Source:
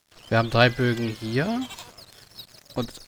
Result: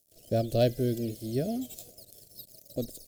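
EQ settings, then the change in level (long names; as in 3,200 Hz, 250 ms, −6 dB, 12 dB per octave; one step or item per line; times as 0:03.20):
drawn EQ curve 180 Hz 0 dB, 650 Hz +3 dB, 930 Hz −29 dB, 14,000 Hz +14 dB
−6.0 dB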